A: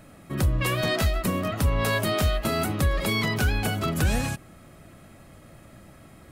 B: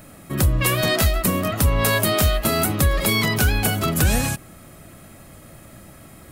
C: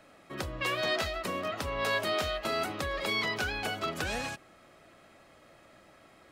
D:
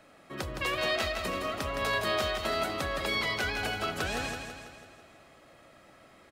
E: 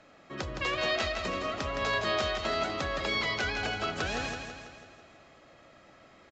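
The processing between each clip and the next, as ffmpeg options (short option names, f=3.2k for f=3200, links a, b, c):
-af "highshelf=f=8.1k:g=11.5,volume=4.5dB"
-filter_complex "[0:a]acrossover=split=330 5900:gain=0.178 1 0.0891[a][b][c];[a][b][c]amix=inputs=3:normalize=0,volume=-8dB"
-af "aecho=1:1:165|330|495|660|825|990|1155:0.473|0.256|0.138|0.0745|0.0402|0.0217|0.0117"
-af "aresample=16000,aresample=44100"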